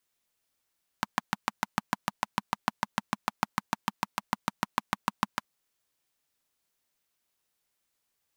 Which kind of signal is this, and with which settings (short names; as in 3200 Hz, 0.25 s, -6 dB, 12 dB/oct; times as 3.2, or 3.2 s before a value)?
single-cylinder engine model, steady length 4.43 s, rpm 800, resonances 210/940 Hz